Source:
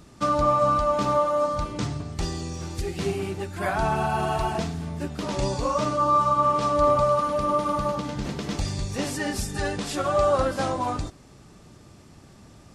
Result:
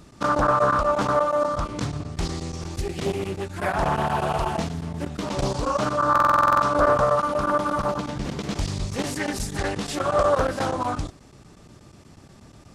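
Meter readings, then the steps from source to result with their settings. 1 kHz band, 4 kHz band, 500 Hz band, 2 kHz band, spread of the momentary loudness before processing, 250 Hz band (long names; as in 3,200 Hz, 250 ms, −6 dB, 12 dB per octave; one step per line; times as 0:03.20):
+1.5 dB, +1.0 dB, +1.0 dB, +5.0 dB, 11 LU, +1.0 dB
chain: square-wave tremolo 8.3 Hz, duty 90%
buffer that repeats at 0:06.11, samples 2,048, times 10
highs frequency-modulated by the lows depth 0.54 ms
level +1.5 dB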